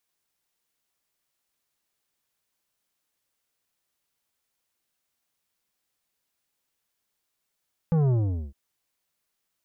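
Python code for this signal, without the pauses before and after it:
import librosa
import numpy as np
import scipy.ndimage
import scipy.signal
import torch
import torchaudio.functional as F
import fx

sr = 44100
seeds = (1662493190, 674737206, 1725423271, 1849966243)

y = fx.sub_drop(sr, level_db=-20, start_hz=170.0, length_s=0.61, drive_db=10.5, fade_s=0.43, end_hz=65.0)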